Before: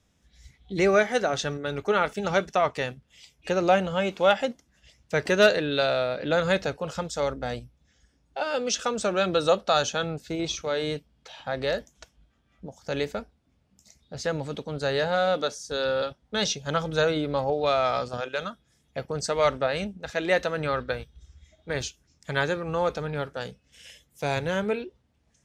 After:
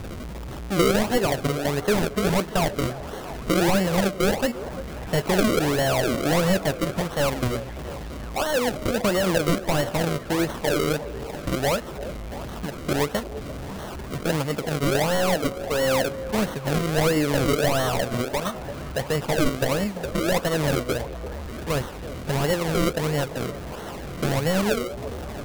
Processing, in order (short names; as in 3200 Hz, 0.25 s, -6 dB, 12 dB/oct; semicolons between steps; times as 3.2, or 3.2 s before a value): delta modulation 16 kbps, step -38.5 dBFS; in parallel at +1 dB: compressor, threshold -41 dBFS, peak gain reduction 18 dB; on the sum: decimation with a swept rate 35×, swing 100% 1.5 Hz; delay with a stepping band-pass 0.342 s, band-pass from 500 Hz, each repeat 0.7 oct, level -10.5 dB; gain +4.5 dB